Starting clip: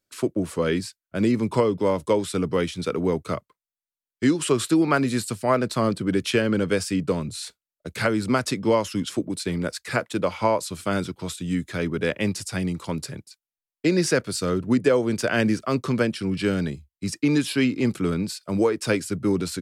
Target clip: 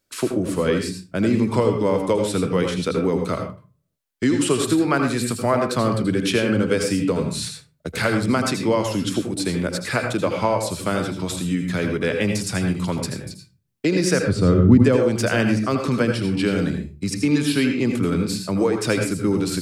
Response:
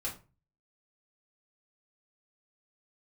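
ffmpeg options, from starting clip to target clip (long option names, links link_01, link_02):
-filter_complex "[0:a]acompressor=threshold=-35dB:ratio=1.5,asplit=3[link_01][link_02][link_03];[link_01]afade=type=out:start_time=14.21:duration=0.02[link_04];[link_02]aemphasis=mode=reproduction:type=riaa,afade=type=in:start_time=14.21:duration=0.02,afade=type=out:start_time=14.77:duration=0.02[link_05];[link_03]afade=type=in:start_time=14.77:duration=0.02[link_06];[link_04][link_05][link_06]amix=inputs=3:normalize=0,asplit=2[link_07][link_08];[1:a]atrim=start_sample=2205,adelay=78[link_09];[link_08][link_09]afir=irnorm=-1:irlink=0,volume=-6dB[link_10];[link_07][link_10]amix=inputs=2:normalize=0,volume=7dB"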